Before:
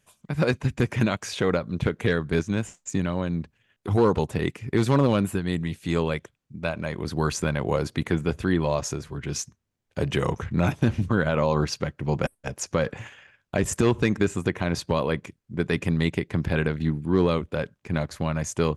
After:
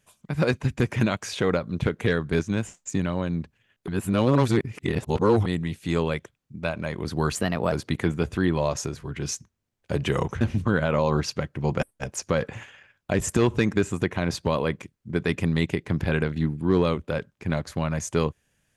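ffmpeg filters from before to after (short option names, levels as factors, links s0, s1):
-filter_complex "[0:a]asplit=6[s0][s1][s2][s3][s4][s5];[s0]atrim=end=3.882[s6];[s1]atrim=start=3.878:end=5.462,asetpts=PTS-STARTPTS,areverse[s7];[s2]atrim=start=5.458:end=7.354[s8];[s3]atrim=start=7.35:end=7.79,asetpts=PTS-STARTPTS,asetrate=52479,aresample=44100[s9];[s4]atrim=start=7.786:end=10.482[s10];[s5]atrim=start=10.848[s11];[s6][s7]acrossfade=d=0.004:c1=hsin:c2=hsin[s12];[s12][s8]acrossfade=d=0.004:c1=hsin:c2=hsin[s13];[s13][s9]acrossfade=d=0.004:c1=hsin:c2=hsin[s14];[s14][s10]acrossfade=d=0.004:c1=hsin:c2=hsin[s15];[s15][s11]acrossfade=d=0.004:c1=hsin:c2=hsin"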